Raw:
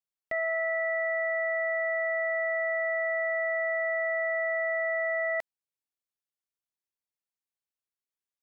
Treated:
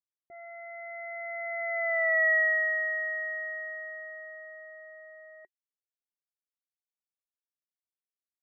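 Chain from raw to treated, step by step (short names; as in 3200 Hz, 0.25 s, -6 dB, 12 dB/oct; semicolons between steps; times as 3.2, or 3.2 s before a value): Doppler pass-by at 2.06, 14 m/s, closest 4 m; low-pass opened by the level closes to 470 Hz, open at -33.5 dBFS; small resonant body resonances 370/1900 Hz, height 12 dB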